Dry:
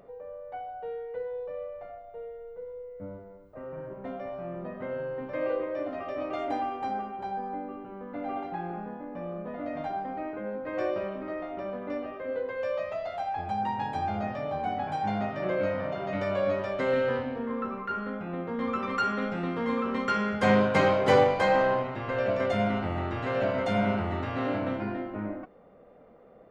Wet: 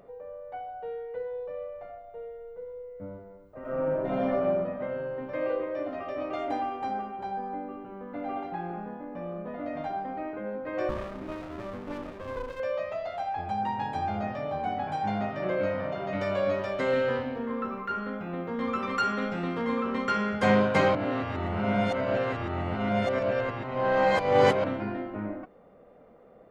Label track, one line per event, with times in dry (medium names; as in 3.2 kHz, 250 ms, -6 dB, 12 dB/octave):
3.600000	4.400000	reverb throw, RT60 1.6 s, DRR -10.5 dB
10.890000	12.600000	sliding maximum over 33 samples
16.200000	19.620000	treble shelf 4.1 kHz +5.5 dB
20.950000	24.640000	reverse